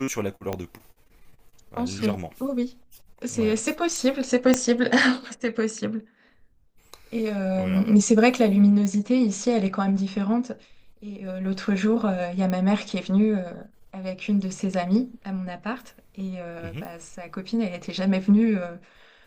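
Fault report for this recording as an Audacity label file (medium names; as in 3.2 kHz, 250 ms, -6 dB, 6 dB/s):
0.530000	0.530000	pop -15 dBFS
4.540000	4.540000	pop -6 dBFS
8.850000	8.850000	pop -15 dBFS
12.500000	12.500000	pop -16 dBFS
16.850000	16.850000	pop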